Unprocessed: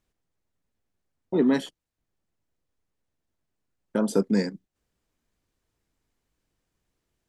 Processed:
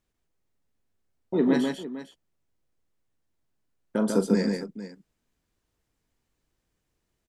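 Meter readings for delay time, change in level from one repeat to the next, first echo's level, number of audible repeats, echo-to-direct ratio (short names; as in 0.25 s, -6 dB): 42 ms, no steady repeat, -12.5 dB, 3, -2.5 dB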